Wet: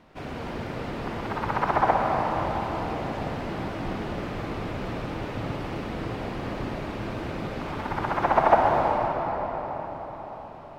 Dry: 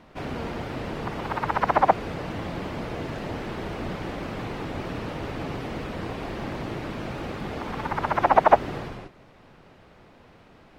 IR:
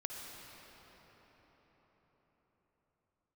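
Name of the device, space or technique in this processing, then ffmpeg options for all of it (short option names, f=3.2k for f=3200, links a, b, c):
cathedral: -filter_complex "[1:a]atrim=start_sample=2205[a];[0:a][a]afir=irnorm=-1:irlink=0"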